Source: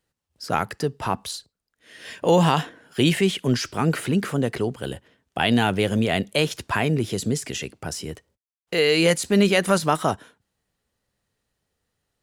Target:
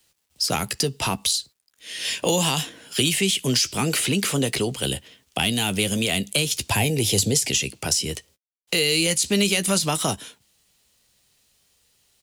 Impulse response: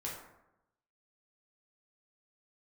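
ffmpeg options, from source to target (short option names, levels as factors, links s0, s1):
-filter_complex "[0:a]highshelf=f=10000:g=-8,acrossover=split=120[s0][s1];[s1]aexciter=amount=4.5:drive=5.8:freq=2300[s2];[s0][s2]amix=inputs=2:normalize=0,acrossover=split=300|7000[s3][s4][s5];[s3]acompressor=threshold=0.0355:ratio=4[s6];[s4]acompressor=threshold=0.0447:ratio=4[s7];[s5]acompressor=threshold=0.0316:ratio=4[s8];[s6][s7][s8]amix=inputs=3:normalize=0,asettb=1/sr,asplit=3[s9][s10][s11];[s9]atrim=end=6.694[s12];[s10]atrim=start=6.69:end=7.51,asetpts=PTS-STARTPTS,afade=t=in:d=0.004:c=qsin,afade=t=out:st=0.816:d=0.004:c=qsin,equalizer=f=100:t=o:w=0.33:g=11,equalizer=f=500:t=o:w=0.33:g=6,equalizer=f=800:t=o:w=0.33:g=9,equalizer=f=1250:t=o:w=0.33:g=-10,equalizer=f=12500:t=o:w=0.33:g=6[s13];[s11]atrim=start=7.506[s14];[s12][s13]acrossfade=d=0.004:c1=hsin:c2=qsin[s15];[s15][s14]acrossfade=d=0.004:c1=qsin:c2=hsin,asplit=2[s16][s17];[s17]aeval=exprs='0.188*(abs(mod(val(0)/0.188+3,4)-2)-1)':c=same,volume=0.501[s18];[s16][s18]amix=inputs=2:normalize=0,acrusher=bits=10:mix=0:aa=0.000001,asplit=2[s19][s20];[s20]adelay=15,volume=0.224[s21];[s19][s21]amix=inputs=2:normalize=0"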